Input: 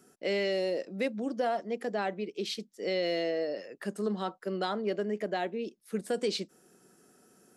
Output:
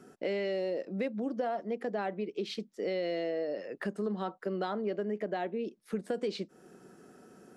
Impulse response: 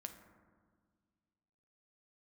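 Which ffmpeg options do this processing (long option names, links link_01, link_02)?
-af "lowpass=frequency=1900:poles=1,acompressor=threshold=-43dB:ratio=2.5,volume=8dB"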